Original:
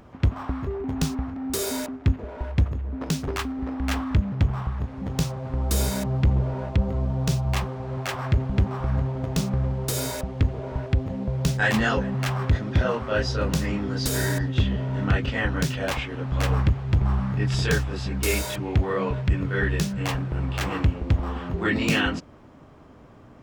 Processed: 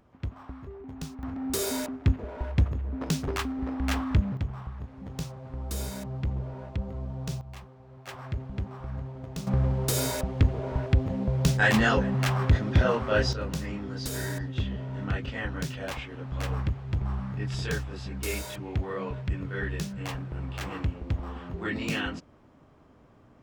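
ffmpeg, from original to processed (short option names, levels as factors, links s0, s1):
-af "asetnsamples=n=441:p=0,asendcmd='1.23 volume volume -2dB;4.37 volume volume -10dB;7.41 volume volume -19dB;8.07 volume volume -11.5dB;9.47 volume volume 0dB;13.33 volume volume -8dB',volume=0.224"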